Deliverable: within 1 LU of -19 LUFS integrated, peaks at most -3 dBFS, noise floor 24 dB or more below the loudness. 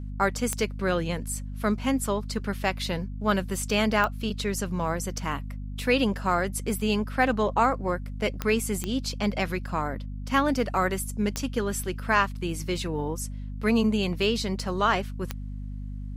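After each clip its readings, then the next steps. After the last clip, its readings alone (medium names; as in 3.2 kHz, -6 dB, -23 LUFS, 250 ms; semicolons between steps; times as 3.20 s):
clicks found 6; hum 50 Hz; highest harmonic 250 Hz; hum level -32 dBFS; loudness -27.0 LUFS; peak level -8.0 dBFS; loudness target -19.0 LUFS
-> de-click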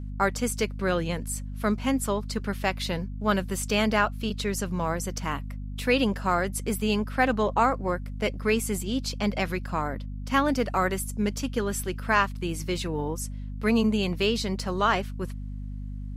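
clicks found 0; hum 50 Hz; highest harmonic 250 Hz; hum level -32 dBFS
-> de-hum 50 Hz, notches 5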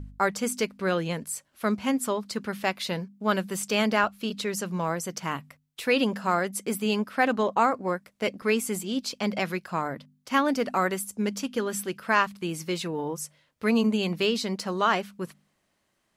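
hum not found; loudness -27.5 LUFS; peak level -8.0 dBFS; loudness target -19.0 LUFS
-> trim +8.5 dB; peak limiter -3 dBFS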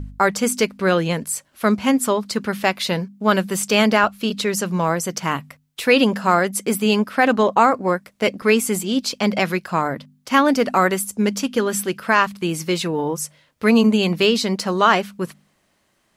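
loudness -19.5 LUFS; peak level -3.0 dBFS; noise floor -65 dBFS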